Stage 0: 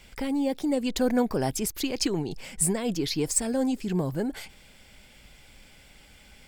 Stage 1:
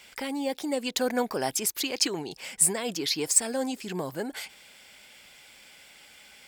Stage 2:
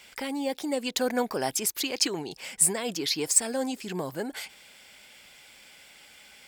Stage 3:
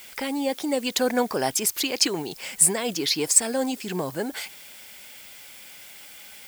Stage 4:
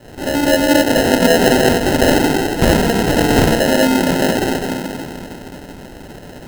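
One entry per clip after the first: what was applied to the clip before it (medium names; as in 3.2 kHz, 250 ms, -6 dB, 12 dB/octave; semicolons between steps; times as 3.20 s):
high-pass 810 Hz 6 dB/octave; trim +4 dB
no audible change
added noise blue -51 dBFS; trim +4 dB
reverberation RT60 2.9 s, pre-delay 3 ms, DRR -14 dB; sample-and-hold 38×; trim -1.5 dB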